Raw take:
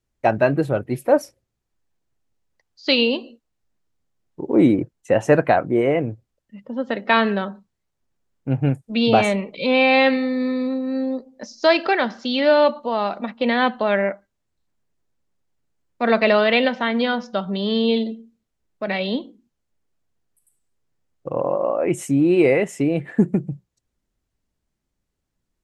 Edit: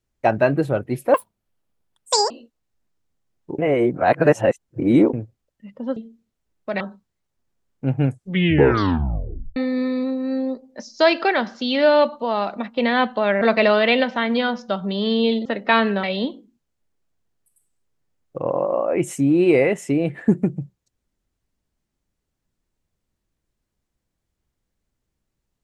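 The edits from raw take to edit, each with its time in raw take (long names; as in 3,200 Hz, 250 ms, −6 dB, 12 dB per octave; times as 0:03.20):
0:01.14–0:03.20: play speed 177%
0:04.48–0:06.03: reverse
0:06.86–0:07.44: swap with 0:18.10–0:18.94
0:08.70: tape stop 1.50 s
0:14.05–0:16.06: remove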